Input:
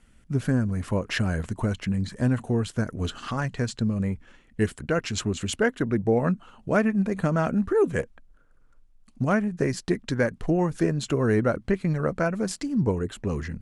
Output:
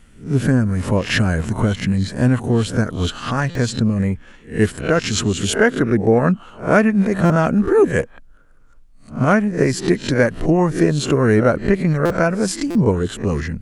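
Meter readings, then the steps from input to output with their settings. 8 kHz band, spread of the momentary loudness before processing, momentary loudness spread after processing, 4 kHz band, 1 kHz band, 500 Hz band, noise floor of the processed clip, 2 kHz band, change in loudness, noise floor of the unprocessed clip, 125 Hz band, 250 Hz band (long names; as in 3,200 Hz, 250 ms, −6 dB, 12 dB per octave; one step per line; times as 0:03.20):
+9.5 dB, 7 LU, 7 LU, +9.5 dB, +9.0 dB, +8.5 dB, −46 dBFS, +9.5 dB, +8.5 dB, −57 dBFS, +8.0 dB, +8.0 dB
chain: peak hold with a rise ahead of every peak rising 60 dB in 0.31 s
buffer that repeats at 0:03.50/0:07.25/0:12.05/0:12.70, samples 256, times 8
level +7.5 dB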